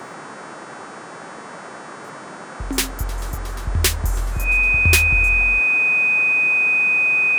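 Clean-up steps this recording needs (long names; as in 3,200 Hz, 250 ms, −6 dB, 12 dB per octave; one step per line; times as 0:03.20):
hum removal 383.3 Hz, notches 25
notch filter 2,500 Hz, Q 30
noise reduction from a noise print 29 dB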